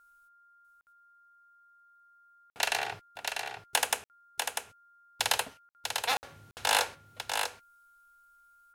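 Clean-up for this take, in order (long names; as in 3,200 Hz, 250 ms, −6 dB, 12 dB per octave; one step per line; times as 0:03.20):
clipped peaks rebuilt −11.5 dBFS
notch filter 1,400 Hz, Q 30
repair the gap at 0:00.81/0:02.50/0:04.04/0:05.69/0:06.17/0:06.51, 59 ms
echo removal 645 ms −5.5 dB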